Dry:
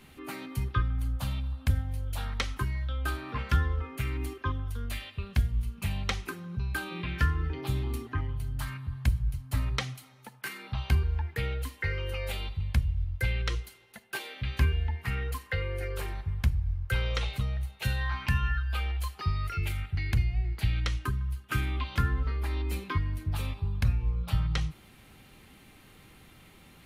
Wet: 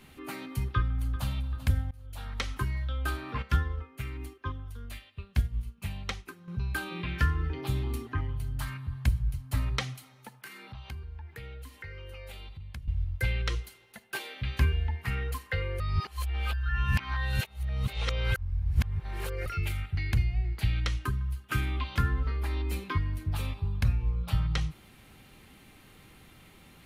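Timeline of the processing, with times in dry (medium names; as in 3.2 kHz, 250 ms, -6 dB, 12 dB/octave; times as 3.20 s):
0.68–1.28 s: echo throw 390 ms, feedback 55%, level -15 dB
1.91–2.56 s: fade in linear, from -23.5 dB
3.42–6.48 s: upward expansion, over -47 dBFS
10.38–12.88 s: compression 2.5:1, threshold -45 dBFS
15.80–19.46 s: reverse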